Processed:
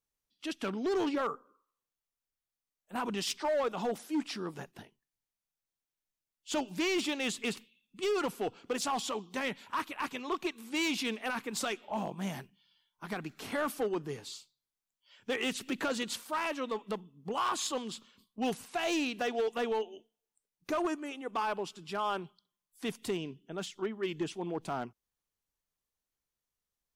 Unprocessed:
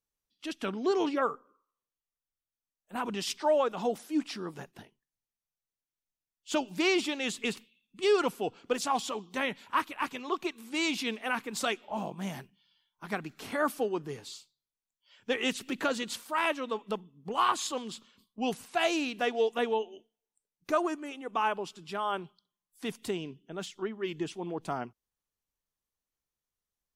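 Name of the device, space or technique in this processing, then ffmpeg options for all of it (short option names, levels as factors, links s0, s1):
limiter into clipper: -af "alimiter=limit=0.0794:level=0:latency=1:release=26,asoftclip=type=hard:threshold=0.0473"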